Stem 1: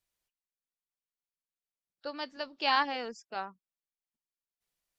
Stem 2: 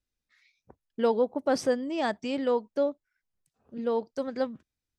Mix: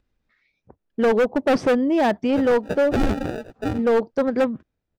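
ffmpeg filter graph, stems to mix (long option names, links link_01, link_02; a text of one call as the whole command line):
ffmpeg -i stem1.wav -i stem2.wav -filter_complex "[0:a]aphaser=in_gain=1:out_gain=1:delay=1.9:decay=0.38:speed=1.1:type=triangular,acrusher=samples=41:mix=1:aa=0.000001,adelay=300,volume=0.5dB[link_01];[1:a]highshelf=frequency=6900:gain=-10,acompressor=mode=upward:threshold=-57dB:ratio=2.5,volume=0.5dB,asplit=2[link_02][link_03];[link_03]apad=whole_len=233043[link_04];[link_01][link_04]sidechaincompress=threshold=-26dB:ratio=8:attack=16:release=181[link_05];[link_05][link_02]amix=inputs=2:normalize=0,lowpass=frequency=1400:poles=1,dynaudnorm=framelen=210:gausssize=9:maxgain=16dB,asoftclip=type=hard:threshold=-14.5dB" out.wav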